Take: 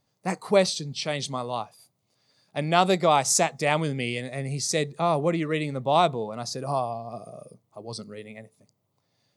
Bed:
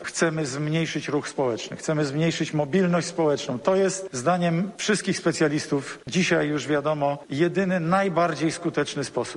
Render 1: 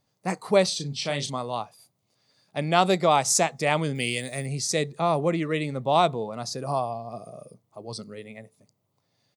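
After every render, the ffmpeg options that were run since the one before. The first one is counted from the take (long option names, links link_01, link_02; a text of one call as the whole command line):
ffmpeg -i in.wav -filter_complex "[0:a]asplit=3[link_01][link_02][link_03];[link_01]afade=type=out:start_time=0.71:duration=0.02[link_04];[link_02]asplit=2[link_05][link_06];[link_06]adelay=35,volume=-7dB[link_07];[link_05][link_07]amix=inputs=2:normalize=0,afade=type=in:start_time=0.71:duration=0.02,afade=type=out:start_time=1.29:duration=0.02[link_08];[link_03]afade=type=in:start_time=1.29:duration=0.02[link_09];[link_04][link_08][link_09]amix=inputs=3:normalize=0,asettb=1/sr,asplit=3[link_10][link_11][link_12];[link_10]atrim=end=3.954[link_13];[link_11]atrim=start=3.95:end=4.46,asetpts=PTS-STARTPTS,afade=type=in:duration=0.004:curve=qsin,afade=type=out:start_time=0.506:duration=0.004:curve=qsin,aemphasis=mode=production:type=75fm[link_14];[link_12]atrim=start=4.456[link_15];[link_13][link_14]acrossfade=duration=0.004:curve1=hsin:curve2=qsin[link_16];[link_16][link_15]acrossfade=duration=0.004:curve1=qsin:curve2=hsin" out.wav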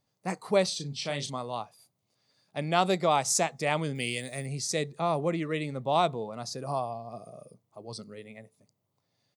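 ffmpeg -i in.wav -af "volume=-4.5dB" out.wav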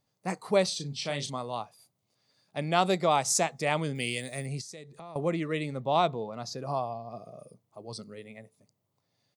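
ffmpeg -i in.wav -filter_complex "[0:a]asettb=1/sr,asplit=3[link_01][link_02][link_03];[link_01]atrim=end=4.614[link_04];[link_02]atrim=start=4.61:end=5.16,asetpts=PTS-STARTPTS,afade=type=in:duration=0.004:curve=qsin,afade=type=out:start_time=0.546:duration=0.004:curve=qsin,acompressor=threshold=-44dB:ratio=4:attack=3.2:release=140:knee=1:detection=peak[link_05];[link_03]atrim=start=5.156[link_06];[link_04][link_05]acrossfade=duration=0.004:curve1=hsin:curve2=qsin[link_07];[link_07][link_06]acrossfade=duration=0.004:curve1=qsin:curve2=hsin,asettb=1/sr,asplit=3[link_08][link_09][link_10];[link_08]atrim=end=5.804[link_11];[link_09]atrim=start=5.8:end=7.39,asetpts=PTS-STARTPTS,afade=type=in:duration=0.004:curve=qsin,afade=type=out:start_time=1.586:duration=0.004:curve=qsin,equalizer=frequency=9300:width_type=o:width=0.42:gain=-14.5[link_12];[link_10]atrim=start=7.386[link_13];[link_11][link_12]acrossfade=duration=0.004:curve1=hsin:curve2=qsin[link_14];[link_14][link_13]acrossfade=duration=0.004:curve1=qsin:curve2=hsin" out.wav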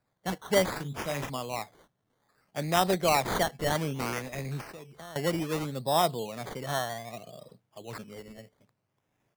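ffmpeg -i in.wav -filter_complex "[0:a]acrossover=split=250|1300|6100[link_01][link_02][link_03][link_04];[link_04]asoftclip=type=tanh:threshold=-32.5dB[link_05];[link_01][link_02][link_03][link_05]amix=inputs=4:normalize=0,acrusher=samples=14:mix=1:aa=0.000001:lfo=1:lforange=8.4:lforate=0.63" out.wav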